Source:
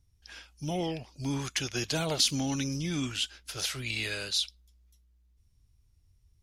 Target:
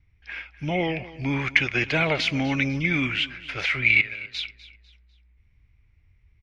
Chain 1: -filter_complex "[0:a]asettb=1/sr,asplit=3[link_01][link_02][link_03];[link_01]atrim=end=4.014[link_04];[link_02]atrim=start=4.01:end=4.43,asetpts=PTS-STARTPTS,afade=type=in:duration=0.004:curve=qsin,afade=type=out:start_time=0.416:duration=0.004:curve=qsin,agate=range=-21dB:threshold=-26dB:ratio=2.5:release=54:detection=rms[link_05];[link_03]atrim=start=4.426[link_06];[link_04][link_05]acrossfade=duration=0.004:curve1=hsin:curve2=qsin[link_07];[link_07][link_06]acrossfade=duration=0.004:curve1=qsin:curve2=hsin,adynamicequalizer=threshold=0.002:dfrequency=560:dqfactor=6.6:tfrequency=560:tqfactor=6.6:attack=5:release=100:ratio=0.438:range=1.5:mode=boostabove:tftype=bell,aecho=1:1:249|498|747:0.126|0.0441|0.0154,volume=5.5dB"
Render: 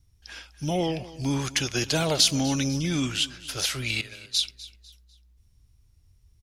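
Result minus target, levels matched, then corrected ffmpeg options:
2,000 Hz band −9.0 dB
-filter_complex "[0:a]asettb=1/sr,asplit=3[link_01][link_02][link_03];[link_01]atrim=end=4.014[link_04];[link_02]atrim=start=4.01:end=4.43,asetpts=PTS-STARTPTS,afade=type=in:duration=0.004:curve=qsin,afade=type=out:start_time=0.416:duration=0.004:curve=qsin,agate=range=-21dB:threshold=-26dB:ratio=2.5:release=54:detection=rms[link_05];[link_03]atrim=start=4.426[link_06];[link_04][link_05]acrossfade=duration=0.004:curve1=hsin:curve2=qsin[link_07];[link_07][link_06]acrossfade=duration=0.004:curve1=qsin:curve2=hsin,adynamicequalizer=threshold=0.002:dfrequency=560:dqfactor=6.6:tfrequency=560:tqfactor=6.6:attack=5:release=100:ratio=0.438:range=1.5:mode=boostabove:tftype=bell,lowpass=frequency=2200:width_type=q:width=6.9,aecho=1:1:249|498|747:0.126|0.0441|0.0154,volume=5.5dB"

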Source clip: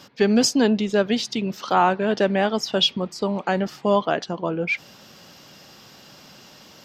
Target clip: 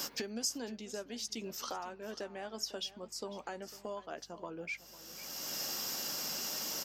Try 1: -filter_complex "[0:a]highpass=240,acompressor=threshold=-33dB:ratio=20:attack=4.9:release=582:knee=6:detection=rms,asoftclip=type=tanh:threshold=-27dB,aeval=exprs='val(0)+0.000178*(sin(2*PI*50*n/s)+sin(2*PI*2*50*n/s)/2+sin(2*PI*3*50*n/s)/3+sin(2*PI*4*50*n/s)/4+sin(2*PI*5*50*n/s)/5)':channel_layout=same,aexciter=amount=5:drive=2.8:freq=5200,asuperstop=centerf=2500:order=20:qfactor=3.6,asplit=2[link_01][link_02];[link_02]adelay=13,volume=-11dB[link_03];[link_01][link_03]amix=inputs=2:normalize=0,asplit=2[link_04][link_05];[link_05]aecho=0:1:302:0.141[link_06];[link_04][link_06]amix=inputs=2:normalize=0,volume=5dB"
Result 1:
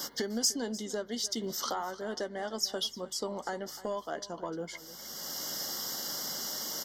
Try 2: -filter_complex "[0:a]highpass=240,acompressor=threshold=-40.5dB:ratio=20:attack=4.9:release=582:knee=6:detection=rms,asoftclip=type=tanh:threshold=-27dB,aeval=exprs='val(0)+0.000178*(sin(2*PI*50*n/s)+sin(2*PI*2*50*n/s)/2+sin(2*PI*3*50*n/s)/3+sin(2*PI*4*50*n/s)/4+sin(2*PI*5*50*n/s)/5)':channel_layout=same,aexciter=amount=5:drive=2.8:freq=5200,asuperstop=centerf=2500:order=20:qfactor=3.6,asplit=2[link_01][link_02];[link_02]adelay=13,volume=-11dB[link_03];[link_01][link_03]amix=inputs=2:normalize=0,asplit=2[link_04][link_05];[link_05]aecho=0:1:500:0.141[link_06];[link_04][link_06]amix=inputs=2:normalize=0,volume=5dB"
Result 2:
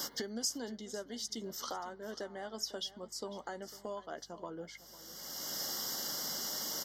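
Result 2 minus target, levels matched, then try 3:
2,000 Hz band −3.0 dB
-filter_complex "[0:a]highpass=240,acompressor=threshold=-40.5dB:ratio=20:attack=4.9:release=582:knee=6:detection=rms,asoftclip=type=tanh:threshold=-27dB,aeval=exprs='val(0)+0.000178*(sin(2*PI*50*n/s)+sin(2*PI*2*50*n/s)/2+sin(2*PI*3*50*n/s)/3+sin(2*PI*4*50*n/s)/4+sin(2*PI*5*50*n/s)/5)':channel_layout=same,aexciter=amount=5:drive=2.8:freq=5200,asplit=2[link_01][link_02];[link_02]adelay=13,volume=-11dB[link_03];[link_01][link_03]amix=inputs=2:normalize=0,asplit=2[link_04][link_05];[link_05]aecho=0:1:500:0.141[link_06];[link_04][link_06]amix=inputs=2:normalize=0,volume=5dB"

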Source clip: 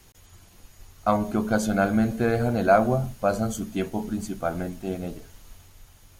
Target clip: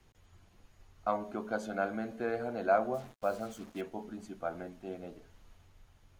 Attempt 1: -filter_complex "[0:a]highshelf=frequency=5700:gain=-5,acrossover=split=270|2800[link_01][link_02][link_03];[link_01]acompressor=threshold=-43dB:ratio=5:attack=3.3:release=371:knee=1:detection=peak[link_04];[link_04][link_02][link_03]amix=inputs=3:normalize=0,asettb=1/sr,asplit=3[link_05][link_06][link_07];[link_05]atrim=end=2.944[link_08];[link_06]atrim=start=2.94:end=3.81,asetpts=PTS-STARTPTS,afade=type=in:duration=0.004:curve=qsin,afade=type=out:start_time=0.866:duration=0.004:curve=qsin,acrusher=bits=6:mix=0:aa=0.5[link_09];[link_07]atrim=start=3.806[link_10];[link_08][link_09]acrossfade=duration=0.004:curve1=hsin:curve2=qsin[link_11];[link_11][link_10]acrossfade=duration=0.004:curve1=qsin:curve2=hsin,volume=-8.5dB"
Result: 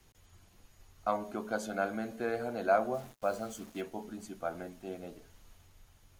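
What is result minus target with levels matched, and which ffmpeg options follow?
8,000 Hz band +6.5 dB
-filter_complex "[0:a]highshelf=frequency=5700:gain=-17,acrossover=split=270|2800[link_01][link_02][link_03];[link_01]acompressor=threshold=-43dB:ratio=5:attack=3.3:release=371:knee=1:detection=peak[link_04];[link_04][link_02][link_03]amix=inputs=3:normalize=0,asettb=1/sr,asplit=3[link_05][link_06][link_07];[link_05]atrim=end=2.944[link_08];[link_06]atrim=start=2.94:end=3.81,asetpts=PTS-STARTPTS,afade=type=in:duration=0.004:curve=qsin,afade=type=out:start_time=0.866:duration=0.004:curve=qsin,acrusher=bits=6:mix=0:aa=0.5[link_09];[link_07]atrim=start=3.806[link_10];[link_08][link_09]acrossfade=duration=0.004:curve1=hsin:curve2=qsin[link_11];[link_11][link_10]acrossfade=duration=0.004:curve1=qsin:curve2=hsin,volume=-8.5dB"

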